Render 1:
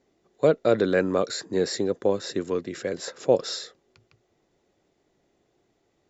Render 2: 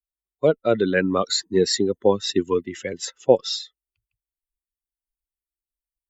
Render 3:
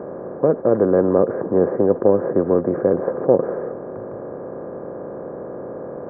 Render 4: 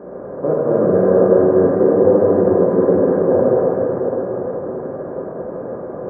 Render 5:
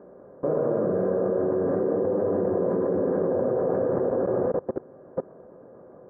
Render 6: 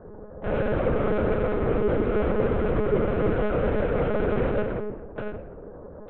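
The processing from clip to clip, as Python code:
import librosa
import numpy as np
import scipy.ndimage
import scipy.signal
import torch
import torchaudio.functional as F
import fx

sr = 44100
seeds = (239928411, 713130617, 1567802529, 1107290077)

y1 = fx.bin_expand(x, sr, power=2.0)
y1 = fx.dynamic_eq(y1, sr, hz=3700.0, q=1.3, threshold_db=-49.0, ratio=4.0, max_db=4)
y1 = fx.rider(y1, sr, range_db=5, speed_s=0.5)
y1 = y1 * 10.0 ** (8.0 / 20.0)
y2 = fx.bin_compress(y1, sr, power=0.2)
y2 = scipy.ndimage.gaussian_filter1d(y2, 8.5, mode='constant')
y2 = y2 * 10.0 ** (-1.5 / 20.0)
y3 = fx.quant_float(y2, sr, bits=8)
y3 = fx.rev_plate(y3, sr, seeds[0], rt60_s=4.9, hf_ratio=0.65, predelay_ms=0, drr_db=-9.5)
y3 = y3 * 10.0 ** (-6.5 / 20.0)
y4 = fx.level_steps(y3, sr, step_db=24)
y5 = 10.0 ** (-27.5 / 20.0) * np.tanh(y4 / 10.0 ** (-27.5 / 20.0))
y5 = fx.room_shoebox(y5, sr, seeds[1], volume_m3=280.0, walls='mixed', distance_m=2.9)
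y5 = fx.lpc_monotone(y5, sr, seeds[2], pitch_hz=210.0, order=8)
y5 = y5 * 10.0 ** (-2.0 / 20.0)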